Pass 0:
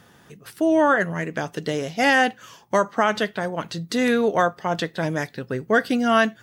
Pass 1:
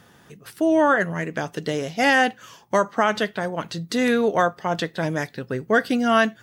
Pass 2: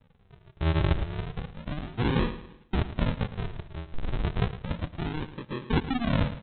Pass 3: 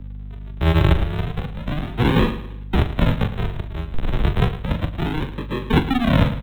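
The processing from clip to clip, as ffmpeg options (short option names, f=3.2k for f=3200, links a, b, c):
-af anull
-af "aresample=8000,acrusher=samples=22:mix=1:aa=0.000001:lfo=1:lforange=22:lforate=0.32,aresample=44100,aecho=1:1:110|220|330|440:0.224|0.0828|0.0306|0.0113,volume=-7dB"
-filter_complex "[0:a]aeval=exprs='val(0)+0.00891*(sin(2*PI*50*n/s)+sin(2*PI*2*50*n/s)/2+sin(2*PI*3*50*n/s)/3+sin(2*PI*4*50*n/s)/4+sin(2*PI*5*50*n/s)/5)':c=same,acrossover=split=170|400|1200[a][b][c][d];[d]acrusher=bits=4:mode=log:mix=0:aa=0.000001[e];[a][b][c][e]amix=inputs=4:normalize=0,asplit=2[f][g];[g]adelay=42,volume=-11dB[h];[f][h]amix=inputs=2:normalize=0,volume=8.5dB"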